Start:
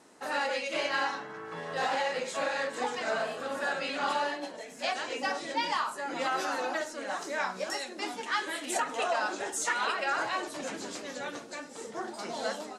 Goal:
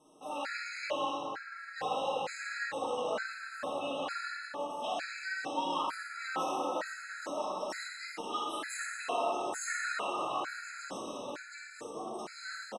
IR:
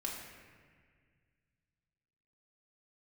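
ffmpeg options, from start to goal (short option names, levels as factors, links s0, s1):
-filter_complex "[0:a]aecho=1:1:52.48|119.5:0.355|0.316[s0];[1:a]atrim=start_sample=2205,asetrate=24255,aresample=44100[s1];[s0][s1]afir=irnorm=-1:irlink=0,afftfilt=real='re*gt(sin(2*PI*1.1*pts/sr)*(1-2*mod(floor(b*sr/1024/1300),2)),0)':imag='im*gt(sin(2*PI*1.1*pts/sr)*(1-2*mod(floor(b*sr/1024/1300),2)),0)':win_size=1024:overlap=0.75,volume=0.447"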